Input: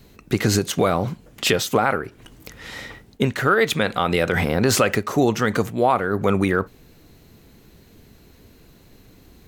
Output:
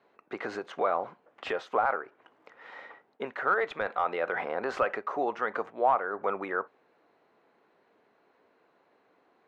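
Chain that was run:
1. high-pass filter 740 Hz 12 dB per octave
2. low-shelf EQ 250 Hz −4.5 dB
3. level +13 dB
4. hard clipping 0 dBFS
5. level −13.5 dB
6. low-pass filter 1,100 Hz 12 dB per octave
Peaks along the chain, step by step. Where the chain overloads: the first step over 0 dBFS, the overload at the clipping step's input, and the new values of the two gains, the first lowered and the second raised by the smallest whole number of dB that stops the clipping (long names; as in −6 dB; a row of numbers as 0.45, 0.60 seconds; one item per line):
−6.0, −6.5, +6.5, 0.0, −13.5, −13.5 dBFS
step 3, 6.5 dB
step 3 +6 dB, step 5 −6.5 dB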